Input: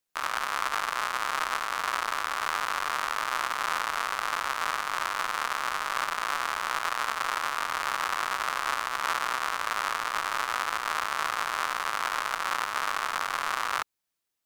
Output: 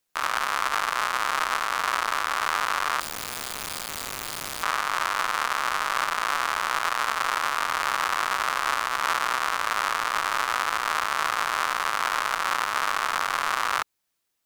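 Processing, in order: in parallel at -0.5 dB: peak limiter -18 dBFS, peak gain reduction 8 dB; 3.00–4.63 s: on the sum: integer overflow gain 23.5 dB

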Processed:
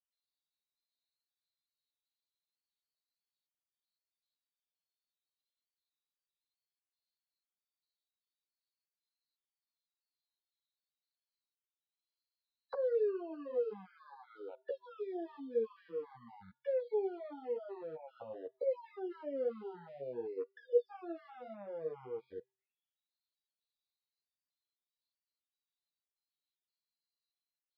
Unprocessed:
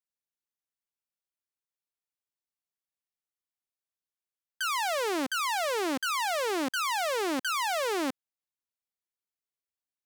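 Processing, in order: random holes in the spectrogram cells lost 59%; tilt shelf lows -5 dB, about 820 Hz; peak limiter -24.5 dBFS, peak gain reduction 5.5 dB; wide varispeed 0.362×; auto-wah 480–4100 Hz, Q 10, down, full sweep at -34.5 dBFS; resampled via 11.025 kHz; feedback comb 130 Hz, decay 0.45 s, harmonics odd, mix 40%; three-phase chorus; trim +12.5 dB

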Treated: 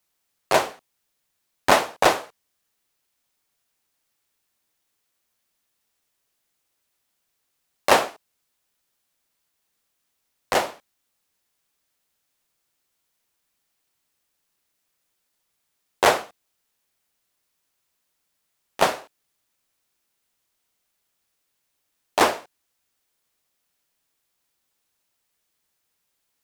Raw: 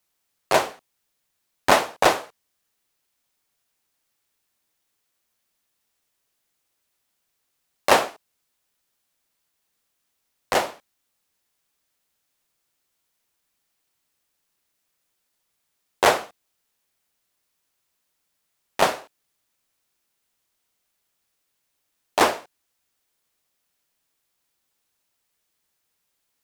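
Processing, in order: 16.21–18.81 s: compression, threshold -35 dBFS, peak gain reduction 13 dB

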